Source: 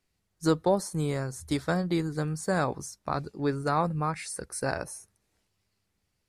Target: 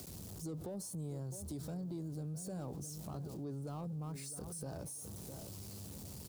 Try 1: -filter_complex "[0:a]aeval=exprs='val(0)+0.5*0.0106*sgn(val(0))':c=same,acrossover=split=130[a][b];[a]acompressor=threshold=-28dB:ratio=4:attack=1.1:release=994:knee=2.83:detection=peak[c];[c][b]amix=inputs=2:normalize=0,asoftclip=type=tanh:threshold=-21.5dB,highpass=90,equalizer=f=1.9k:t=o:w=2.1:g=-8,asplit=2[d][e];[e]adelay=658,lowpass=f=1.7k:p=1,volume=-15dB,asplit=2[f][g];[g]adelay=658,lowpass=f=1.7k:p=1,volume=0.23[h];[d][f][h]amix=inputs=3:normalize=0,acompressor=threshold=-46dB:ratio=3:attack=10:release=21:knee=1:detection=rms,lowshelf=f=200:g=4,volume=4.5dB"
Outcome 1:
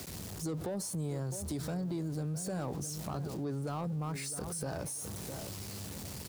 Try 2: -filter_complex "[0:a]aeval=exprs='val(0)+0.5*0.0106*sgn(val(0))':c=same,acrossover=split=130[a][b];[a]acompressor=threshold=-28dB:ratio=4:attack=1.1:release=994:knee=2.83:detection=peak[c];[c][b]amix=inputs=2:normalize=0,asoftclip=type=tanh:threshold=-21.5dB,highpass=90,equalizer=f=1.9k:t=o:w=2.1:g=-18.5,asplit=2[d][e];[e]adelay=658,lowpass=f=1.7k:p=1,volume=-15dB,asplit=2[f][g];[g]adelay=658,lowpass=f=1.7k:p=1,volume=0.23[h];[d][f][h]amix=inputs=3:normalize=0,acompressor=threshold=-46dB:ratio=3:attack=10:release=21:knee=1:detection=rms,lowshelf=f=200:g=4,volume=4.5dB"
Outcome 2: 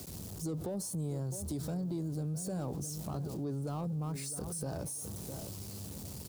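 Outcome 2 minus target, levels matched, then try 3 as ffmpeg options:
compressor: peak gain reduction -6 dB
-filter_complex "[0:a]aeval=exprs='val(0)+0.5*0.0106*sgn(val(0))':c=same,acrossover=split=130[a][b];[a]acompressor=threshold=-28dB:ratio=4:attack=1.1:release=994:knee=2.83:detection=peak[c];[c][b]amix=inputs=2:normalize=0,asoftclip=type=tanh:threshold=-21.5dB,highpass=90,equalizer=f=1.9k:t=o:w=2.1:g=-18.5,asplit=2[d][e];[e]adelay=658,lowpass=f=1.7k:p=1,volume=-15dB,asplit=2[f][g];[g]adelay=658,lowpass=f=1.7k:p=1,volume=0.23[h];[d][f][h]amix=inputs=3:normalize=0,acompressor=threshold=-55dB:ratio=3:attack=10:release=21:knee=1:detection=rms,lowshelf=f=200:g=4,volume=4.5dB"

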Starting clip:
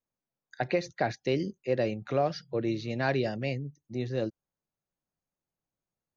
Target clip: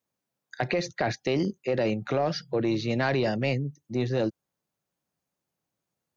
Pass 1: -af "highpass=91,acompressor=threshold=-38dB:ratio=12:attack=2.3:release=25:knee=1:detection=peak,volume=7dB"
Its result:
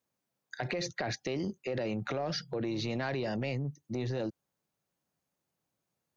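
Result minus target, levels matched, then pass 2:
compressor: peak gain reduction +8.5 dB
-af "highpass=91,acompressor=threshold=-28.5dB:ratio=12:attack=2.3:release=25:knee=1:detection=peak,volume=7dB"

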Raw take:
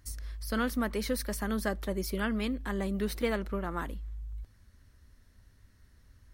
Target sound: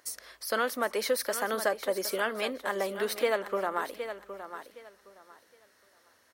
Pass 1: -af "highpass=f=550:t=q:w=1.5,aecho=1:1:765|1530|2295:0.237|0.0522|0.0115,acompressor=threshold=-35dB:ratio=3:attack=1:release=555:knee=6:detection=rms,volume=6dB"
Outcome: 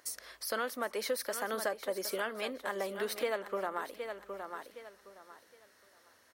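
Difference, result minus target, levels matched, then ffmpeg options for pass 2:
compressor: peak gain reduction +6.5 dB
-af "highpass=f=550:t=q:w=1.5,aecho=1:1:765|1530|2295:0.237|0.0522|0.0115,acompressor=threshold=-25dB:ratio=3:attack=1:release=555:knee=6:detection=rms,volume=6dB"

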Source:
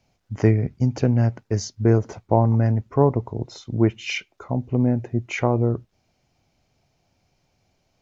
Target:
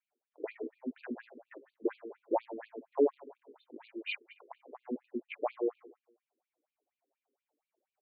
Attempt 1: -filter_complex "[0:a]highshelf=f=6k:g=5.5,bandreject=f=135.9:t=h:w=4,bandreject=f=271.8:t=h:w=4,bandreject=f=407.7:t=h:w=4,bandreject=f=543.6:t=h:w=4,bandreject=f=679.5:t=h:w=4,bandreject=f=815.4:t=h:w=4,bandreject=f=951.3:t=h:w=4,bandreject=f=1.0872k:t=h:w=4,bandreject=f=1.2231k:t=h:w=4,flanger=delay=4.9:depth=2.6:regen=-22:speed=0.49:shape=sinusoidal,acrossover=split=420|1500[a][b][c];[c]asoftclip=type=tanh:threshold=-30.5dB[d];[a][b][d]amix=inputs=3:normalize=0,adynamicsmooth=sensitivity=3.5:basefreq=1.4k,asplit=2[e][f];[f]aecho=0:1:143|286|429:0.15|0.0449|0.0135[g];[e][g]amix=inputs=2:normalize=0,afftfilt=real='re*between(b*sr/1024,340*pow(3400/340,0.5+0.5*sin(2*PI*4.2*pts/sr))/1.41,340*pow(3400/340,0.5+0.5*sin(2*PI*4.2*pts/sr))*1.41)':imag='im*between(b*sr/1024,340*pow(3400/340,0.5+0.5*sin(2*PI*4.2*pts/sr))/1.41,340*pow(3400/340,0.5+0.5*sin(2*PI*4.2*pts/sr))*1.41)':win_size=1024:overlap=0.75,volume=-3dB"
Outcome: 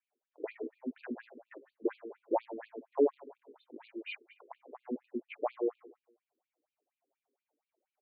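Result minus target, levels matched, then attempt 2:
soft clip: distortion +16 dB
-filter_complex "[0:a]highshelf=f=6k:g=5.5,bandreject=f=135.9:t=h:w=4,bandreject=f=271.8:t=h:w=4,bandreject=f=407.7:t=h:w=4,bandreject=f=543.6:t=h:w=4,bandreject=f=679.5:t=h:w=4,bandreject=f=815.4:t=h:w=4,bandreject=f=951.3:t=h:w=4,bandreject=f=1.0872k:t=h:w=4,bandreject=f=1.2231k:t=h:w=4,flanger=delay=4.9:depth=2.6:regen=-22:speed=0.49:shape=sinusoidal,acrossover=split=420|1500[a][b][c];[c]asoftclip=type=tanh:threshold=-18.5dB[d];[a][b][d]amix=inputs=3:normalize=0,adynamicsmooth=sensitivity=3.5:basefreq=1.4k,asplit=2[e][f];[f]aecho=0:1:143|286|429:0.15|0.0449|0.0135[g];[e][g]amix=inputs=2:normalize=0,afftfilt=real='re*between(b*sr/1024,340*pow(3400/340,0.5+0.5*sin(2*PI*4.2*pts/sr))/1.41,340*pow(3400/340,0.5+0.5*sin(2*PI*4.2*pts/sr))*1.41)':imag='im*between(b*sr/1024,340*pow(3400/340,0.5+0.5*sin(2*PI*4.2*pts/sr))/1.41,340*pow(3400/340,0.5+0.5*sin(2*PI*4.2*pts/sr))*1.41)':win_size=1024:overlap=0.75,volume=-3dB"

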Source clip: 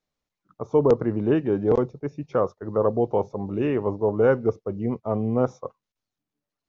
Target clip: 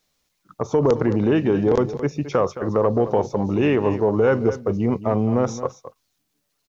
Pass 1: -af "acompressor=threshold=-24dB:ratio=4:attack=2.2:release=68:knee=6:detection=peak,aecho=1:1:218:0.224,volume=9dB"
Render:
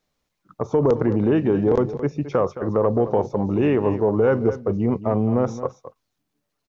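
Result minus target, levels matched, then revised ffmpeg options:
4000 Hz band -6.5 dB
-af "acompressor=threshold=-24dB:ratio=4:attack=2.2:release=68:knee=6:detection=peak,highshelf=f=2.4k:g=10.5,aecho=1:1:218:0.224,volume=9dB"

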